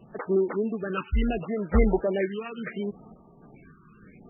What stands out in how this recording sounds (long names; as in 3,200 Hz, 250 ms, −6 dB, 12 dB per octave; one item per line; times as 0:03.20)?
sample-and-hold tremolo
phaser sweep stages 12, 0.71 Hz, lowest notch 620–4,300 Hz
MP3